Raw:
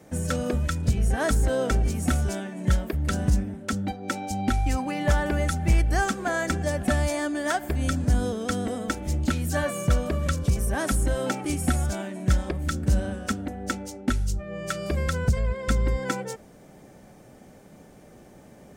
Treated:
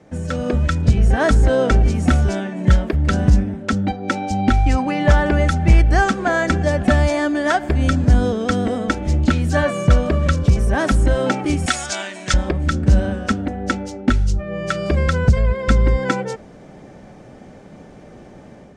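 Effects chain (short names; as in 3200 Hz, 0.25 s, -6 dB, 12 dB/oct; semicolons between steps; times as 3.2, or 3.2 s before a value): air absorption 100 m; AGC gain up to 6.5 dB; 11.66–12.34 weighting filter ITU-R 468; gain +2.5 dB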